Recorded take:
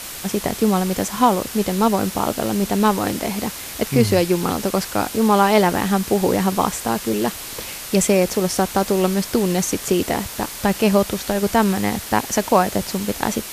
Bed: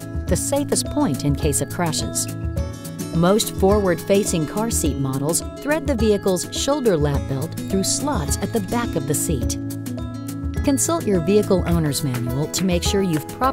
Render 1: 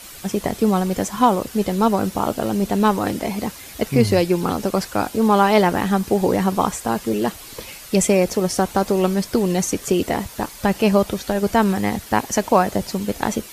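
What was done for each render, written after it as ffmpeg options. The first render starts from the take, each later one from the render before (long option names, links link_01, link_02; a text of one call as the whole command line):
ffmpeg -i in.wav -af "afftdn=noise_reduction=9:noise_floor=-33" out.wav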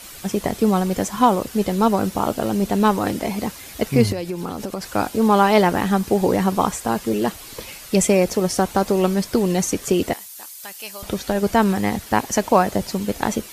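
ffmpeg -i in.wav -filter_complex "[0:a]asettb=1/sr,asplit=3[link_01][link_02][link_03];[link_01]atrim=end=4.124[link_04];[link_02]atrim=start=4.12:end=4.93,asetpts=PTS-STARTPTS,afade=type=in:duration=0.004:curve=qsin,afade=type=out:start_time=0.806:duration=0.004:curve=qsin,acompressor=threshold=-24dB:ratio=4:attack=3.2:release=140:knee=1:detection=peak[link_05];[link_03]atrim=start=4.926[link_06];[link_04][link_05]acrossfade=duration=0.004:curve1=hsin:curve2=qsin[link_07];[link_07][link_06]acrossfade=duration=0.004:curve1=qsin:curve2=hsin,asettb=1/sr,asplit=3[link_08][link_09][link_10];[link_08]atrim=end=10.134[link_11];[link_09]atrim=start=10.13:end=11.03,asetpts=PTS-STARTPTS,afade=type=in:duration=0.004:curve=qsin,afade=type=out:start_time=0.896:duration=0.004:curve=qsin,aderivative[link_12];[link_10]atrim=start=11.026[link_13];[link_11][link_12]acrossfade=duration=0.004:curve1=hsin:curve2=qsin[link_14];[link_14][link_13]acrossfade=duration=0.004:curve1=qsin:curve2=hsin" out.wav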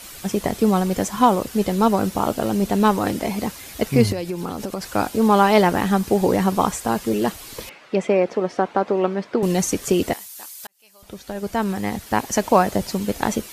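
ffmpeg -i in.wav -filter_complex "[0:a]asettb=1/sr,asplit=3[link_01][link_02][link_03];[link_01]atrim=end=7.694[link_04];[link_02]atrim=start=7.69:end=9.43,asetpts=PTS-STARTPTS,afade=type=in:duration=0.004:curve=qsin,afade=type=out:start_time=1.736:duration=0.004:curve=qsin,highpass=270,lowpass=2200[link_05];[link_03]atrim=start=9.426[link_06];[link_04][link_05]acrossfade=duration=0.004:curve1=hsin:curve2=qsin[link_07];[link_07][link_06]acrossfade=duration=0.004:curve1=qsin:curve2=hsin,asplit=2[link_08][link_09];[link_08]atrim=end=10.67,asetpts=PTS-STARTPTS,afade=type=out:start_time=10.666:duration=0.004:curve=hsin[link_10];[link_09]atrim=start=10.67,asetpts=PTS-STARTPTS,afade=type=in:duration=1.83[link_11];[link_10][link_11]concat=n=2:v=0:a=1" out.wav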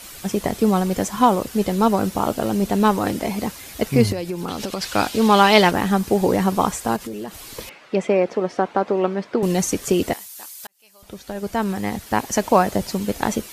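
ffmpeg -i in.wav -filter_complex "[0:a]asettb=1/sr,asplit=3[link_01][link_02][link_03];[link_01]atrim=end=4.484[link_04];[link_02]atrim=start=4.48:end=5.71,asetpts=PTS-STARTPTS,afade=type=in:duration=0.004:curve=qsin,afade=type=out:start_time=1.226:duration=0.004:curve=qsin,equalizer=frequency=3500:width_type=o:width=1.9:gain=10[link_05];[link_03]atrim=start=5.706[link_06];[link_04][link_05]acrossfade=duration=0.004:curve1=hsin:curve2=qsin[link_07];[link_07][link_06]acrossfade=duration=0.004:curve1=qsin:curve2=hsin,asettb=1/sr,asplit=3[link_08][link_09][link_10];[link_08]atrim=end=6.964[link_11];[link_09]atrim=start=6.96:end=7.5,asetpts=PTS-STARTPTS,afade=type=in:duration=0.004:curve=qsin,afade=type=out:start_time=0.536:duration=0.004:curve=qsin,acompressor=threshold=-27dB:ratio=8:attack=3.2:release=140:knee=1:detection=peak[link_12];[link_10]atrim=start=7.496[link_13];[link_11][link_12]acrossfade=duration=0.004:curve1=hsin:curve2=qsin[link_14];[link_14][link_13]acrossfade=duration=0.004:curve1=qsin:curve2=hsin" out.wav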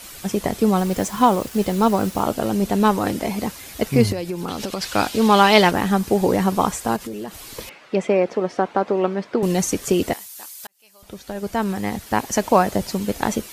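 ffmpeg -i in.wav -filter_complex "[0:a]asettb=1/sr,asplit=3[link_01][link_02][link_03];[link_01]atrim=end=0.784[link_04];[link_02]atrim=start=0.78:end=2.23,asetpts=PTS-STARTPTS,afade=type=in:duration=0.004:curve=qsin,afade=type=out:start_time=1.446:duration=0.004:curve=qsin,acrusher=bits=5:mix=0:aa=0.5[link_05];[link_03]atrim=start=2.226[link_06];[link_04][link_05]acrossfade=duration=0.004:curve1=hsin:curve2=qsin[link_07];[link_07][link_06]acrossfade=duration=0.004:curve1=qsin:curve2=hsin" out.wav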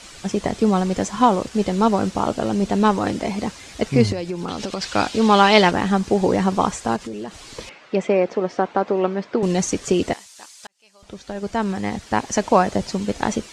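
ffmpeg -i in.wav -af "lowpass=frequency=7900:width=0.5412,lowpass=frequency=7900:width=1.3066" out.wav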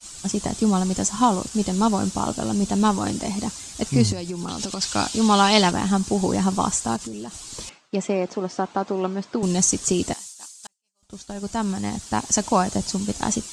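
ffmpeg -i in.wav -af "agate=range=-33dB:threshold=-38dB:ratio=3:detection=peak,equalizer=frequency=500:width_type=o:width=1:gain=-8,equalizer=frequency=2000:width_type=o:width=1:gain=-8,equalizer=frequency=8000:width_type=o:width=1:gain=11" out.wav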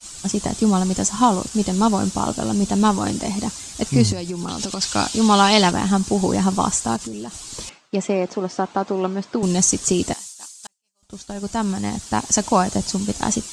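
ffmpeg -i in.wav -af "volume=2.5dB,alimiter=limit=-3dB:level=0:latency=1" out.wav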